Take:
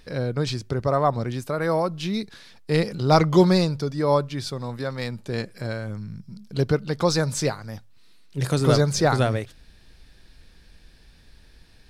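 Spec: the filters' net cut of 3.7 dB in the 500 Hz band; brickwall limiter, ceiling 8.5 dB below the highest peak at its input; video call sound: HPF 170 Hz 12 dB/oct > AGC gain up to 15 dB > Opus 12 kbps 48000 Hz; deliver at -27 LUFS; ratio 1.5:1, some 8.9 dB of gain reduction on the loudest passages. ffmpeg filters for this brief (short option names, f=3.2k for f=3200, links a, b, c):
-af "equalizer=f=500:t=o:g=-4.5,acompressor=threshold=-38dB:ratio=1.5,alimiter=limit=-23dB:level=0:latency=1,highpass=170,dynaudnorm=m=15dB,volume=9.5dB" -ar 48000 -c:a libopus -b:a 12k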